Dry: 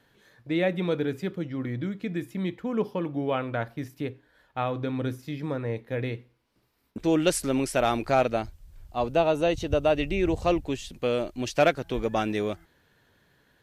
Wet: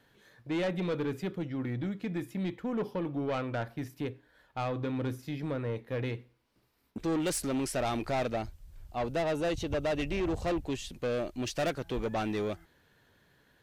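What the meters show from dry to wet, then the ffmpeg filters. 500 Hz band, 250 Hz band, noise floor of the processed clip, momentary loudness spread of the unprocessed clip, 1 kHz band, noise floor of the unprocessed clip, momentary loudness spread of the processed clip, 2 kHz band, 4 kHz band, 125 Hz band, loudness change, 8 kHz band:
−7.0 dB, −4.5 dB, −67 dBFS, 11 LU, −7.0 dB, −66 dBFS, 7 LU, −6.0 dB, −5.5 dB, −3.5 dB, −6.0 dB, −3.5 dB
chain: -af "asoftclip=type=tanh:threshold=-25dB,volume=-1.5dB"

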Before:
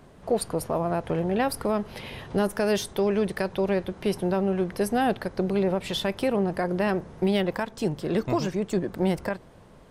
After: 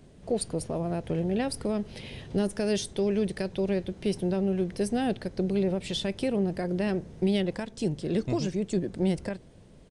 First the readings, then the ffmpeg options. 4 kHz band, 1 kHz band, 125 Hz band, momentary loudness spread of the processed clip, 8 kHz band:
−2.0 dB, −9.5 dB, −0.5 dB, 5 LU, −1.0 dB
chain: -af "equalizer=frequency=1100:width_type=o:width=1.6:gain=-13,aresample=22050,aresample=44100"

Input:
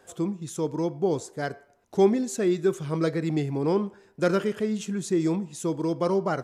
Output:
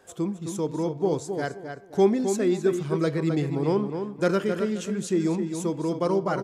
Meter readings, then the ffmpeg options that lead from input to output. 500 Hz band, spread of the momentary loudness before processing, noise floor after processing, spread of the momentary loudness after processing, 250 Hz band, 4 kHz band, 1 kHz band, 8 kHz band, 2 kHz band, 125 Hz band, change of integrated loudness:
+1.0 dB, 8 LU, −43 dBFS, 8 LU, +0.5 dB, +0.5 dB, +0.5 dB, 0.0 dB, +0.5 dB, +1.0 dB, +1.0 dB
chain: -filter_complex "[0:a]asplit=2[link_01][link_02];[link_02]adelay=263,lowpass=frequency=3900:poles=1,volume=-7dB,asplit=2[link_03][link_04];[link_04]adelay=263,lowpass=frequency=3900:poles=1,volume=0.28,asplit=2[link_05][link_06];[link_06]adelay=263,lowpass=frequency=3900:poles=1,volume=0.28[link_07];[link_01][link_03][link_05][link_07]amix=inputs=4:normalize=0"

